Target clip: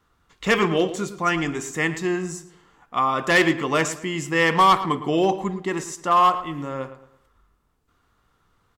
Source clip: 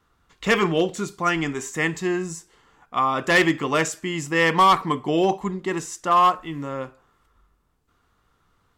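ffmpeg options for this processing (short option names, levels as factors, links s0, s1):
-filter_complex "[0:a]asplit=2[s0][s1];[s1]adelay=111,lowpass=f=3000:p=1,volume=0.237,asplit=2[s2][s3];[s3]adelay=111,lowpass=f=3000:p=1,volume=0.36,asplit=2[s4][s5];[s5]adelay=111,lowpass=f=3000:p=1,volume=0.36,asplit=2[s6][s7];[s7]adelay=111,lowpass=f=3000:p=1,volume=0.36[s8];[s0][s2][s4][s6][s8]amix=inputs=5:normalize=0"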